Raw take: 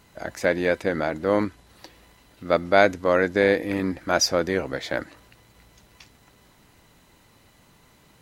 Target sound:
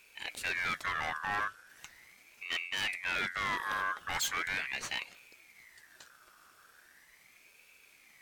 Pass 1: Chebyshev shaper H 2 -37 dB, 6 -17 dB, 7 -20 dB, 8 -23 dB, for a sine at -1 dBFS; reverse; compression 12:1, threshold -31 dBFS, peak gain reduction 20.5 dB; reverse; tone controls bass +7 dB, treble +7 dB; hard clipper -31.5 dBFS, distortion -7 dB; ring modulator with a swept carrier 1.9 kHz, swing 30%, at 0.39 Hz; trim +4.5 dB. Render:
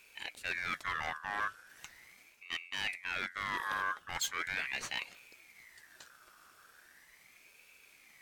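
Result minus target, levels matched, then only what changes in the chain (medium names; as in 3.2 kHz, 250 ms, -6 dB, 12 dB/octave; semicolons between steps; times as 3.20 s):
compression: peak gain reduction +10 dB
change: compression 12:1, threshold -20 dBFS, peak gain reduction 10 dB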